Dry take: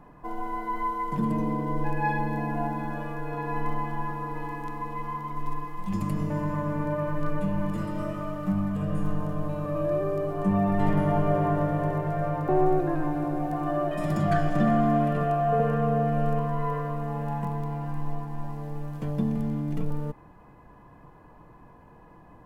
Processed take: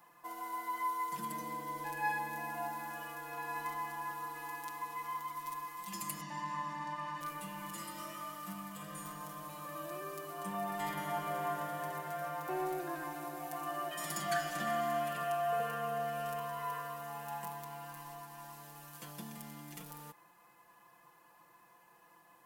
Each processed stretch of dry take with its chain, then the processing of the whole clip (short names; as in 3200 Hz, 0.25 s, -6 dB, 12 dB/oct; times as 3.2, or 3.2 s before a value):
6.21–7.21 Chebyshev band-pass 180–5000 Hz + comb 1.1 ms, depth 74%
whole clip: differentiator; comb 5.8 ms, depth 72%; gain +7 dB